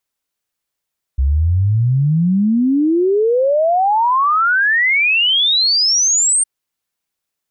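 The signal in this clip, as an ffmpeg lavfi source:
-f lavfi -i "aevalsrc='0.282*clip(min(t,5.26-t)/0.01,0,1)*sin(2*PI*64*5.26/log(8900/64)*(exp(log(8900/64)*t/5.26)-1))':d=5.26:s=44100"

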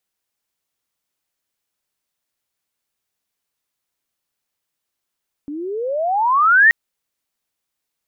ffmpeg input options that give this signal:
-f lavfi -i "aevalsrc='pow(10,(-25.5+19*t/1.23)/20)*sin(2*PI*280*1.23/log(1900/280)*(exp(log(1900/280)*t/1.23)-1))':d=1.23:s=44100"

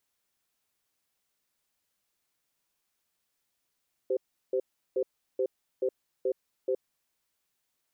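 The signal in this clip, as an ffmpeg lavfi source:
-f lavfi -i "aevalsrc='0.0422*(sin(2*PI*387*t)+sin(2*PI*516*t))*clip(min(mod(t,0.43),0.07-mod(t,0.43))/0.005,0,1)':d=2.95:s=44100"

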